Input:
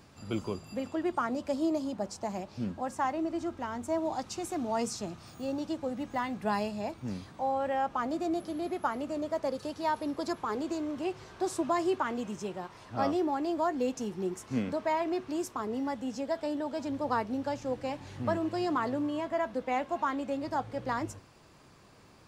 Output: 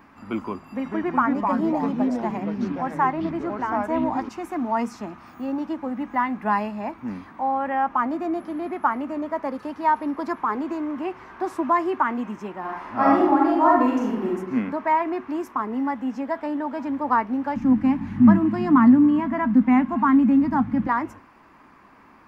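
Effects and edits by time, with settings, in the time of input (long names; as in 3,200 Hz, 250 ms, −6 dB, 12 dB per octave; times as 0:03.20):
0:00.63–0:04.29: delay with pitch and tempo change per echo 114 ms, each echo −4 semitones, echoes 3
0:12.60–0:14.29: thrown reverb, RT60 0.87 s, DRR −4 dB
0:17.56–0:20.87: low shelf with overshoot 310 Hz +12.5 dB, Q 3
whole clip: octave-band graphic EQ 125/250/500/1,000/2,000/4,000/8,000 Hz −10/+10/−5/+10/+8/−8/−12 dB; level +1.5 dB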